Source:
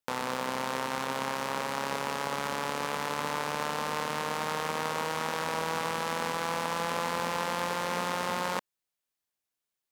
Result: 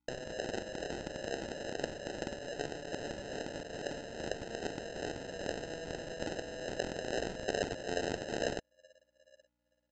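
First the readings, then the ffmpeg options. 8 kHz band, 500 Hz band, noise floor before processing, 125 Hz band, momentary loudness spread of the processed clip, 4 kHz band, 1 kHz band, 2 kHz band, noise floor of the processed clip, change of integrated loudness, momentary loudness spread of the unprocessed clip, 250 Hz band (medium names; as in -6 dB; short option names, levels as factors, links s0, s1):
-8.0 dB, -3.0 dB, under -85 dBFS, -5.0 dB, 5 LU, -7.5 dB, -15.5 dB, -9.0 dB, -80 dBFS, -7.5 dB, 1 LU, -3.5 dB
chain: -filter_complex "[0:a]afftfilt=real='re*pow(10,7/40*sin(2*PI*(0.6*log(max(b,1)*sr/1024/100)/log(2)-(2.4)*(pts-256)/sr)))':imag='im*pow(10,7/40*sin(2*PI*(0.6*log(max(b,1)*sr/1024/100)/log(2)-(2.4)*(pts-256)/sr)))':win_size=1024:overlap=0.75,asplit=3[s0][s1][s2];[s0]bandpass=f=530:t=q:w=8,volume=1[s3];[s1]bandpass=f=1840:t=q:w=8,volume=0.501[s4];[s2]bandpass=f=2480:t=q:w=8,volume=0.355[s5];[s3][s4][s5]amix=inputs=3:normalize=0,asplit=2[s6][s7];[s7]aecho=0:1:875|1750|2625:0.0631|0.0252|0.0101[s8];[s6][s8]amix=inputs=2:normalize=0,anlmdn=0.00631,equalizer=f=125:t=o:w=1:g=-5,equalizer=f=500:t=o:w=1:g=-6,equalizer=f=4000:t=o:w=1:g=-9,aeval=exprs='val(0)+0.000141*(sin(2*PI*60*n/s)+sin(2*PI*2*60*n/s)/2+sin(2*PI*3*60*n/s)/3+sin(2*PI*4*60*n/s)/4+sin(2*PI*5*60*n/s)/5)':c=same,aeval=exprs='0.0282*(cos(1*acos(clip(val(0)/0.0282,-1,1)))-cos(1*PI/2))+0.00891*(cos(7*acos(clip(val(0)/0.0282,-1,1)))-cos(7*PI/2))':c=same,alimiter=level_in=3.16:limit=0.0631:level=0:latency=1:release=413,volume=0.316,acrossover=split=390 6300:gain=0.0631 1 0.224[s9][s10][s11];[s9][s10][s11]amix=inputs=3:normalize=0,aresample=16000,acrusher=samples=14:mix=1:aa=0.000001,aresample=44100,volume=4.22"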